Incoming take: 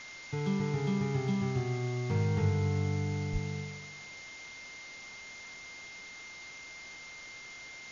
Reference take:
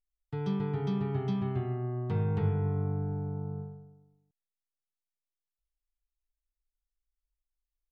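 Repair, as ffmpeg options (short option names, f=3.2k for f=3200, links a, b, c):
-filter_complex "[0:a]bandreject=f=2.1k:w=30,asplit=3[a][b][c];[a]afade=t=out:st=3.32:d=0.02[d];[b]highpass=f=140:w=0.5412,highpass=f=140:w=1.3066,afade=t=in:st=3.32:d=0.02,afade=t=out:st=3.44:d=0.02[e];[c]afade=t=in:st=3.44:d=0.02[f];[d][e][f]amix=inputs=3:normalize=0,afwtdn=0.0045,asetnsamples=n=441:p=0,asendcmd='4.96 volume volume -4.5dB',volume=0dB"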